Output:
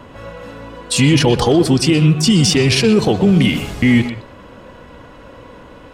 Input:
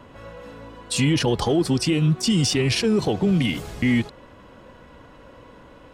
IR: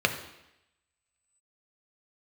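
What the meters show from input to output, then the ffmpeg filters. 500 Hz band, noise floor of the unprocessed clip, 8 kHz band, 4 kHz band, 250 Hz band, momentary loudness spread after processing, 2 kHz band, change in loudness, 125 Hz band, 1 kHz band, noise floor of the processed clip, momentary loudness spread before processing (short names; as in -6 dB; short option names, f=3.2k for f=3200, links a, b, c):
+8.0 dB, -48 dBFS, +7.5 dB, +7.5 dB, +8.0 dB, 20 LU, +8.0 dB, +7.5 dB, +8.0 dB, +7.5 dB, -40 dBFS, 16 LU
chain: -filter_complex "[0:a]asplit=2[a][b];[1:a]atrim=start_sample=2205,atrim=end_sample=3969,adelay=122[c];[b][c]afir=irnorm=-1:irlink=0,volume=-23dB[d];[a][d]amix=inputs=2:normalize=0,volume=7.5dB"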